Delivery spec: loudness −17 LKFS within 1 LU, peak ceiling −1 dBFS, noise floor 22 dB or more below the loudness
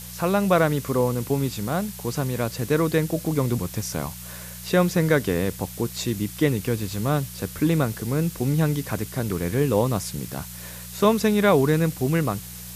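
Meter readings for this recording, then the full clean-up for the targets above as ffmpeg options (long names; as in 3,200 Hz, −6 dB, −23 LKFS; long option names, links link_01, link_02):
mains hum 60 Hz; hum harmonics up to 180 Hz; level of the hum −37 dBFS; background noise floor −38 dBFS; target noise floor −46 dBFS; integrated loudness −24.0 LKFS; sample peak −6.5 dBFS; target loudness −17.0 LKFS
→ -af "bandreject=frequency=60:width_type=h:width=4,bandreject=frequency=120:width_type=h:width=4,bandreject=frequency=180:width_type=h:width=4"
-af "afftdn=noise_reduction=8:noise_floor=-38"
-af "volume=7dB,alimiter=limit=-1dB:level=0:latency=1"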